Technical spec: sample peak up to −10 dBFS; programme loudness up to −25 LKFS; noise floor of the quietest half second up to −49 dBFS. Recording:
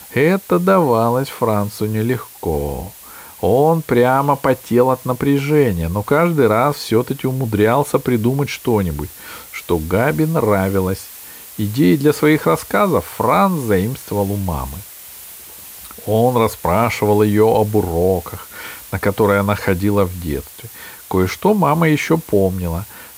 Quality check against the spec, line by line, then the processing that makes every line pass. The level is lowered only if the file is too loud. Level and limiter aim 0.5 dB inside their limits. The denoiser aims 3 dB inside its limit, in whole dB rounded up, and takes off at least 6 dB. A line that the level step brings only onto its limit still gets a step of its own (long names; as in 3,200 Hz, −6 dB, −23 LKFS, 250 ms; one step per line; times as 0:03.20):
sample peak −2.5 dBFS: out of spec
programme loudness −16.5 LKFS: out of spec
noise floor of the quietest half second −38 dBFS: out of spec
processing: broadband denoise 6 dB, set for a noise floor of −38 dBFS
level −9 dB